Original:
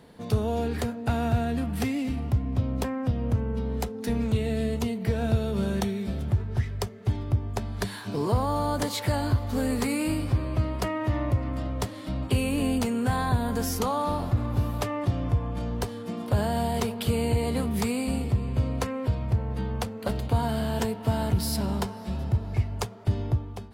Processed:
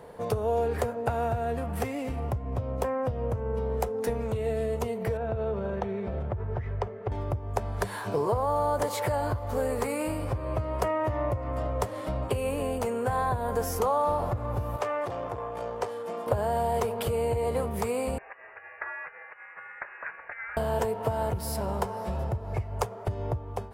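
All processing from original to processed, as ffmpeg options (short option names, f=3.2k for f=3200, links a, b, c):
-filter_complex "[0:a]asettb=1/sr,asplit=3[a][b][c];[a]atrim=end=5.174[d];[b]atrim=start=5.17:end=7.12,asetpts=PTS-STARTPTS,afade=t=in:d=0.004:c=qsin,afade=t=out:st=1.946:d=0.004:c=qsin,lowpass=2.6k,acompressor=threshold=-28dB:ratio=6:attack=3.2:release=140:knee=1:detection=peak[e];[c]atrim=start=7.116[f];[d][e]acrossfade=d=0.004:c1=hsin:c2=qsin[g];[g][f]acrossfade=d=0.004:c1=qsin:c2=hsin,asettb=1/sr,asplit=3[h][i][j];[h]atrim=end=14.764[k];[i]atrim=start=14.76:end=16.27,asetpts=PTS-STARTPTS,afade=t=in:d=0.004:c=qsin,afade=t=out:st=1.506:d=0.004:c=qsin,acrossover=split=7700[l][m];[m]acompressor=threshold=-56dB:ratio=4:attack=1:release=60[n];[l][n]amix=inputs=2:normalize=0,aeval=exprs='(tanh(14.1*val(0)+0.45)-tanh(0.45))/14.1':c=same,highpass=f=510:p=1[o];[j]atrim=start=16.266[p];[k][o]acrossfade=d=0.004:c1=hsin:c2=qsin[q];[q][p]acrossfade=d=0.004:c1=qsin:c2=hsin,asettb=1/sr,asplit=3[r][s][t];[r]atrim=end=18.184[u];[s]atrim=start=18.18:end=20.57,asetpts=PTS-STARTPTS,afade=t=in:d=0.004:c=qsin,afade=t=out:st=2.386:d=0.004:c=qsin,acompressor=threshold=-32dB:ratio=10:attack=3.2:release=140:knee=1:detection=peak,highpass=f=1.3k:t=q:w=3.6,lowpass=f=2.6k:t=q:w=0.5098,lowpass=f=2.6k:t=q:w=0.6013,lowpass=f=2.6k:t=q:w=0.9,lowpass=f=2.6k:t=q:w=2.563,afreqshift=-3000[v];[t]atrim=start=20.566[w];[u][v]acrossfade=d=0.004:c1=hsin:c2=qsin[x];[x][w]acrossfade=d=0.004:c1=qsin:c2=hsin,acompressor=threshold=-29dB:ratio=6,equalizer=f=250:t=o:w=1:g=-9,equalizer=f=500:t=o:w=1:g=9,equalizer=f=1k:t=o:w=1:g=5,equalizer=f=4k:t=o:w=1:g=-8,volume=2.5dB"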